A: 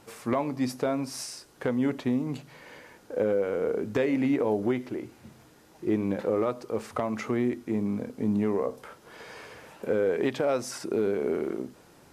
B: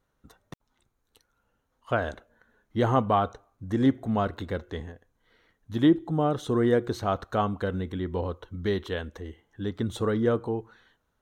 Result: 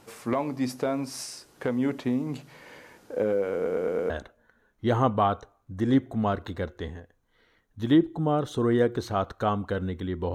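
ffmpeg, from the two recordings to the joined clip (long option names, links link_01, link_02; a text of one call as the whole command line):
ffmpeg -i cue0.wav -i cue1.wav -filter_complex "[0:a]apad=whole_dur=10.34,atrim=end=10.34,asplit=5[link_01][link_02][link_03][link_04][link_05];[link_01]atrim=end=3.662[link_06];[link_02]atrim=start=3.548:end=3.662[link_07];[link_03]atrim=start=3.548:end=3.662[link_08];[link_04]atrim=start=3.548:end=3.662[link_09];[link_05]atrim=start=3.548:end=3.662[link_10];[1:a]atrim=start=2.018:end=8.26[link_11];[link_06][link_07]acrossfade=duration=0.004:curve1=hsin:curve2=hsin[link_12];[link_12][link_08]acrossfade=duration=0.004:curve1=hsin:curve2=hsin[link_13];[link_13][link_09]acrossfade=duration=0.004:curve1=hsin:curve2=hsin[link_14];[link_14][link_10]acrossfade=duration=0.004:curve1=hsin:curve2=hsin[link_15];[link_15][link_11]acrossfade=duration=0.004:curve1=hsin:curve2=hsin" out.wav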